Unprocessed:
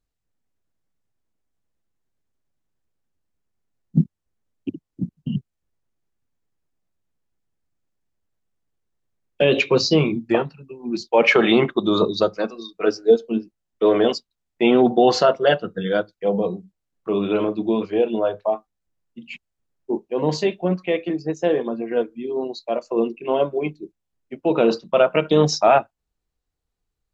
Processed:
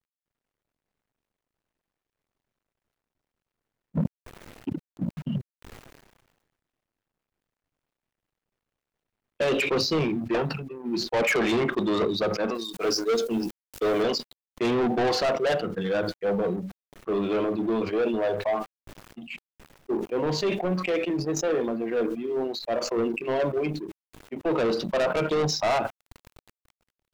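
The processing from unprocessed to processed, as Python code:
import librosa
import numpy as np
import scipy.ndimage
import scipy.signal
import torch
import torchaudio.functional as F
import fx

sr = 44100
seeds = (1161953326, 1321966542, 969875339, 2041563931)

y = fx.law_mismatch(x, sr, coded='A')
y = fx.bass_treble(y, sr, bass_db=-3, treble_db=fx.steps((0.0, -10.0), (12.54, 7.0), (14.02, -8.0)))
y = 10.0 ** (-20.5 / 20.0) * np.tanh(y / 10.0 ** (-20.5 / 20.0))
y = fx.sustainer(y, sr, db_per_s=47.0)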